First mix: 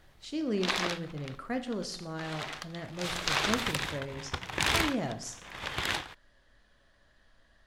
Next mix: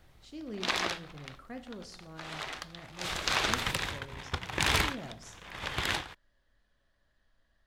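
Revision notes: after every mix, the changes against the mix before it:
speech −10.5 dB
master: add low-shelf EQ 130 Hz +4 dB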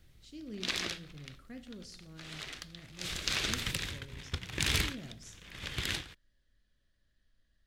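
master: add parametric band 870 Hz −15 dB 1.6 octaves

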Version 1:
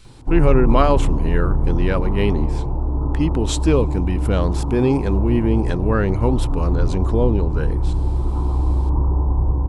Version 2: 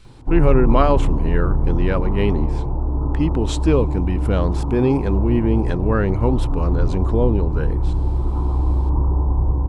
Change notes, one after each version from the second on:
speech: add high-shelf EQ 4,500 Hz −8 dB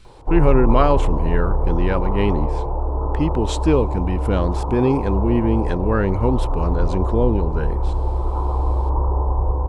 background: add graphic EQ with 10 bands 125 Hz −6 dB, 250 Hz −11 dB, 500 Hz +10 dB, 1,000 Hz +5 dB

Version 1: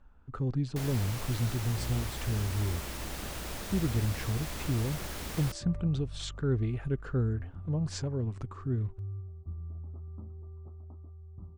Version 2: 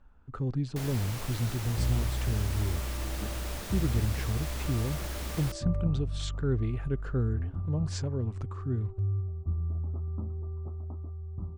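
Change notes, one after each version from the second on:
second sound +9.0 dB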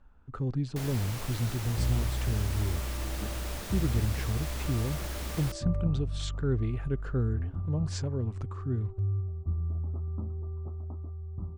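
nothing changed

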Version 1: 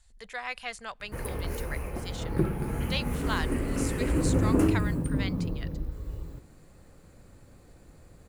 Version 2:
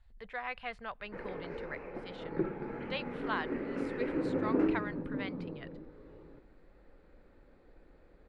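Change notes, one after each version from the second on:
background: add loudspeaker in its box 330–6,700 Hz, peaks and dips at 690 Hz −5 dB, 1,100 Hz −6 dB, 3,000 Hz −7 dB
master: add high-frequency loss of the air 410 metres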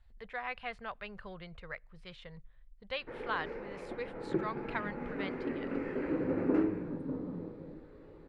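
background: entry +1.95 s

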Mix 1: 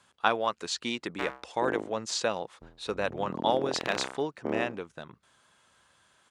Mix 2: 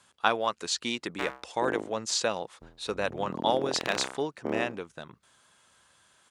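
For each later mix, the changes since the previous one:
master: add high-shelf EQ 5,100 Hz +6.5 dB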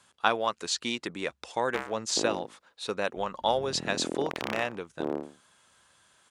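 background: entry +0.55 s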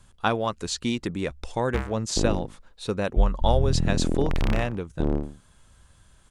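speech: remove meter weighting curve A
background: remove high-pass filter 390 Hz 12 dB per octave

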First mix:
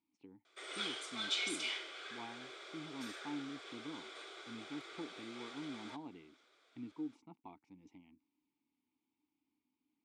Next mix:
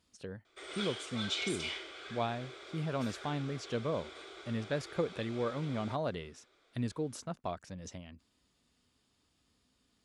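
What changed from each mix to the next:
speech: remove formant filter u
background: remove high-pass filter 540 Hz 6 dB per octave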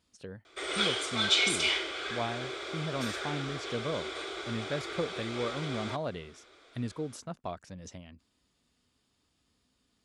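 background +11.0 dB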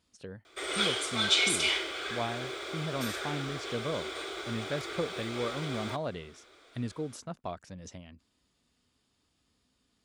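background: remove low-pass filter 8,300 Hz 12 dB per octave

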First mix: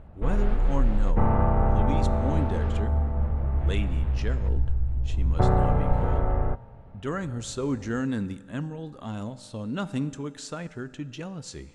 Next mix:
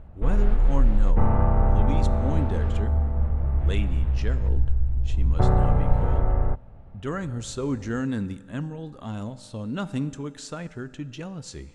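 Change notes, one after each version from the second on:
background: send off
master: add low-shelf EQ 81 Hz +6 dB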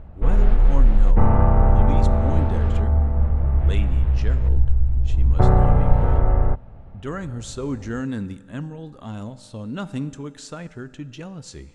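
background +4.5 dB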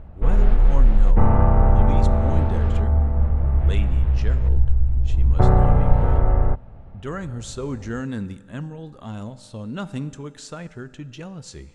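speech: add parametric band 280 Hz −4.5 dB 0.21 octaves

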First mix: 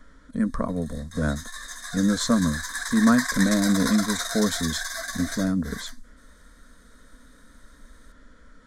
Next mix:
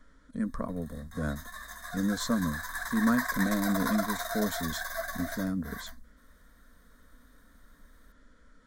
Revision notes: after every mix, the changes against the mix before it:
speech −7.5 dB
background: remove meter weighting curve ITU-R 468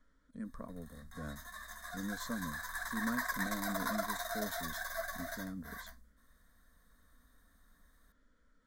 speech −12.0 dB
background −4.5 dB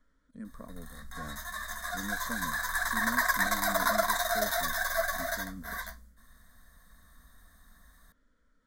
background +10.0 dB

